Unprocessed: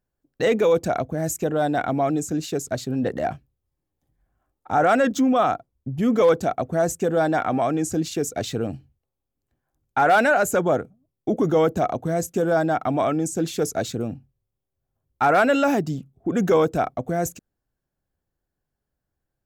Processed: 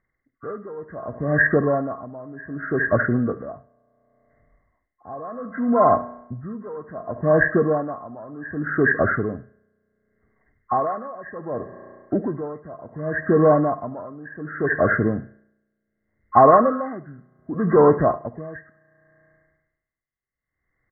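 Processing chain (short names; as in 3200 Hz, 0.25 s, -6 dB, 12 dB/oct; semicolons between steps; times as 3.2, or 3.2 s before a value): nonlinear frequency compression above 1100 Hz 4:1; in parallel at -1 dB: vocal rider 0.5 s; on the sum: varispeed -7%; on a send: echo 71 ms -15 dB; on the sum: spring tank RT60 1.6 s, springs 33 ms, chirp 75 ms, DRR 17.5 dB; dB-linear tremolo 0.67 Hz, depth 22 dB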